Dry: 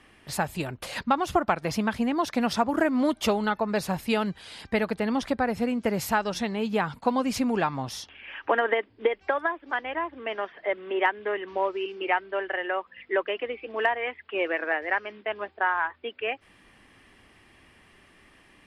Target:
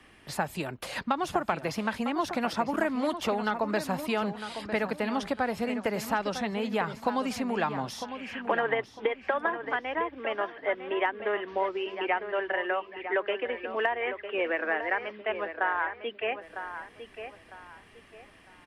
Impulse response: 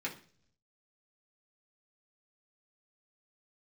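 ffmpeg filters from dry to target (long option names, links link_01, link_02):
-filter_complex "[0:a]acrossover=split=150|530|2300[link_01][link_02][link_03][link_04];[link_01]acompressor=threshold=-51dB:ratio=4[link_05];[link_02]acompressor=threshold=-32dB:ratio=4[link_06];[link_03]acompressor=threshold=-26dB:ratio=4[link_07];[link_04]acompressor=threshold=-40dB:ratio=4[link_08];[link_05][link_06][link_07][link_08]amix=inputs=4:normalize=0,asplit=2[link_09][link_10];[link_10]adelay=953,lowpass=frequency=3200:poles=1,volume=-9.5dB,asplit=2[link_11][link_12];[link_12]adelay=953,lowpass=frequency=3200:poles=1,volume=0.32,asplit=2[link_13][link_14];[link_14]adelay=953,lowpass=frequency=3200:poles=1,volume=0.32,asplit=2[link_15][link_16];[link_16]adelay=953,lowpass=frequency=3200:poles=1,volume=0.32[link_17];[link_09][link_11][link_13][link_15][link_17]amix=inputs=5:normalize=0"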